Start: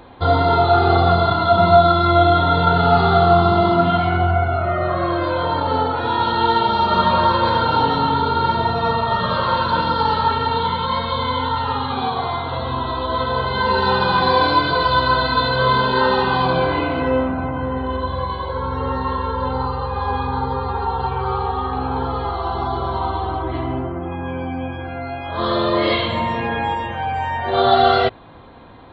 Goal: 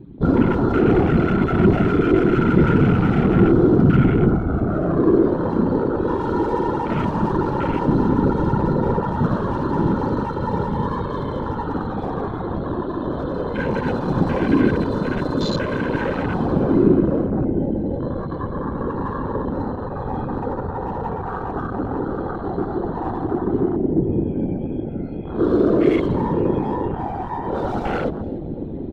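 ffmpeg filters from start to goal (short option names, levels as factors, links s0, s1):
-filter_complex "[0:a]equalizer=f=120:w=4:g=-5,areverse,acompressor=mode=upward:threshold=0.0562:ratio=2.5,areverse,aecho=1:1:6.4:0.79,asoftclip=type=hard:threshold=0.158,lowshelf=f=460:t=q:w=1.5:g=13,bandreject=f=65.17:t=h:w=4,bandreject=f=130.34:t=h:w=4,bandreject=f=195.51:t=h:w=4,bandreject=f=260.68:t=h:w=4,bandreject=f=325.85:t=h:w=4,bandreject=f=391.02:t=h:w=4,bandreject=f=456.19:t=h:w=4,bandreject=f=521.36:t=h:w=4,bandreject=f=586.53:t=h:w=4,bandreject=f=651.7:t=h:w=4,bandreject=f=716.87:t=h:w=4,asplit=2[s0][s1];[s1]adelay=291,lowpass=f=1600:p=1,volume=0.282,asplit=2[s2][s3];[s3]adelay=291,lowpass=f=1600:p=1,volume=0.53,asplit=2[s4][s5];[s5]adelay=291,lowpass=f=1600:p=1,volume=0.53,asplit=2[s6][s7];[s7]adelay=291,lowpass=f=1600:p=1,volume=0.53,asplit=2[s8][s9];[s9]adelay=291,lowpass=f=1600:p=1,volume=0.53,asplit=2[s10][s11];[s11]adelay=291,lowpass=f=1600:p=1,volume=0.53[s12];[s2][s4][s6][s8][s10][s12]amix=inputs=6:normalize=0[s13];[s0][s13]amix=inputs=2:normalize=0,afftfilt=real='hypot(re,im)*cos(2*PI*random(0))':imag='hypot(re,im)*sin(2*PI*random(1))':win_size=512:overlap=0.75,afwtdn=0.0447"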